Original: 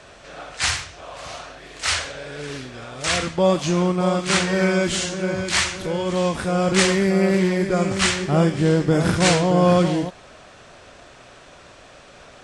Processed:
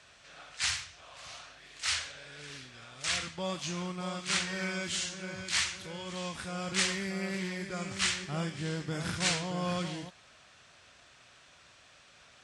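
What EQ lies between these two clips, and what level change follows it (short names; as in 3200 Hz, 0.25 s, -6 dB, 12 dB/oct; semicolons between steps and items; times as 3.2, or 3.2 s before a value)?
HPF 63 Hz; passive tone stack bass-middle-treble 5-5-5; high shelf 8500 Hz -7 dB; 0.0 dB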